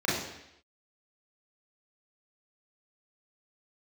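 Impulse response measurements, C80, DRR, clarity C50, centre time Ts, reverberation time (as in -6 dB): 5.0 dB, -7.5 dB, 1.5 dB, 65 ms, 0.80 s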